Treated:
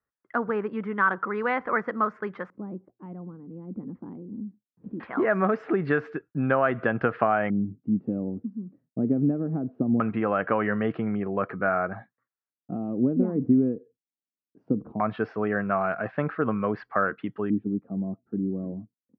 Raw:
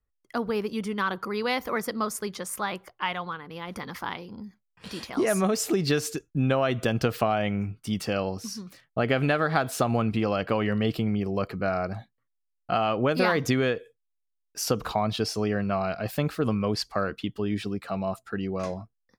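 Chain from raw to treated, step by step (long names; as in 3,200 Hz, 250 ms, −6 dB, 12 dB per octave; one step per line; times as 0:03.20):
auto-filter low-pass square 0.2 Hz 270–1,600 Hz
band-pass filter 150–2,500 Hz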